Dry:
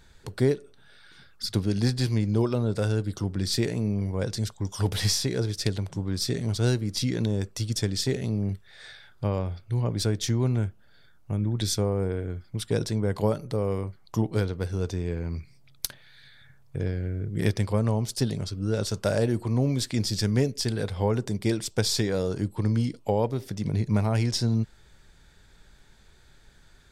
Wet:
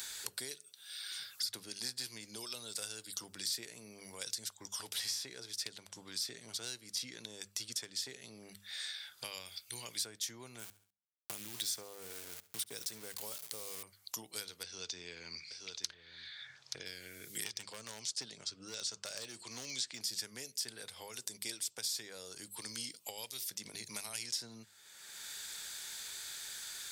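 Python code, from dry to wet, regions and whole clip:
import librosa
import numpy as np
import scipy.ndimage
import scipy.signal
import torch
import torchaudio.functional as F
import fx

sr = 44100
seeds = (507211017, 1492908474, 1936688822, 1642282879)

y = fx.chain(x, sr, fx.clip_hard(threshold_db=-13.0),
    fx.high_shelf(hz=6100.0, db=-8.5), at=(4.67, 9.24))
y = fx.chain(y, sr, fx.sample_gate(floor_db=-37.5),
    fx.echo_feedback(ms=68, feedback_pct=38, wet_db=-20), at=(10.59, 13.83))
y = fx.chain(y, sr, fx.lowpass(hz=5600.0, slope=24),
    fx.echo_single(ms=877, db=-17.5), at=(14.63, 16.86))
y = fx.chain(y, sr, fx.lowpass(hz=7300.0, slope=24),
    fx.overload_stage(gain_db=17.5), at=(17.44, 20.01))
y = np.diff(y, prepend=0.0)
y = fx.hum_notches(y, sr, base_hz=50, count=4)
y = fx.band_squash(y, sr, depth_pct=100)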